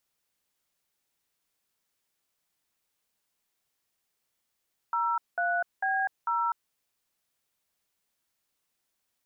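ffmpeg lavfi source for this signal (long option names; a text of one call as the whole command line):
ffmpeg -f lavfi -i "aevalsrc='0.0422*clip(min(mod(t,0.447),0.249-mod(t,0.447))/0.002,0,1)*(eq(floor(t/0.447),0)*(sin(2*PI*941*mod(t,0.447))+sin(2*PI*1336*mod(t,0.447)))+eq(floor(t/0.447),1)*(sin(2*PI*697*mod(t,0.447))+sin(2*PI*1477*mod(t,0.447)))+eq(floor(t/0.447),2)*(sin(2*PI*770*mod(t,0.447))+sin(2*PI*1633*mod(t,0.447)))+eq(floor(t/0.447),3)*(sin(2*PI*941*mod(t,0.447))+sin(2*PI*1336*mod(t,0.447))))':duration=1.788:sample_rate=44100" out.wav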